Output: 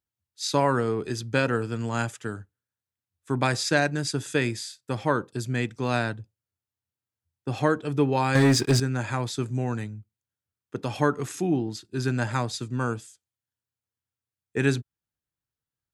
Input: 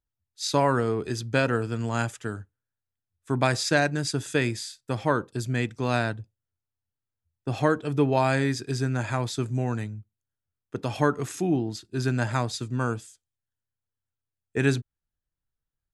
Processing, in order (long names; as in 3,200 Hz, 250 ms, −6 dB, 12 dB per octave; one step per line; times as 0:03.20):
high-pass filter 88 Hz
notch filter 660 Hz, Q 15
0:08.35–0:08.80: leveller curve on the samples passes 3